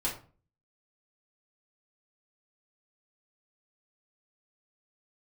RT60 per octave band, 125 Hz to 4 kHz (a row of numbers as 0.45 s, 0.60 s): 0.60 s, 0.50 s, 0.40 s, 0.40 s, 0.30 s, 0.25 s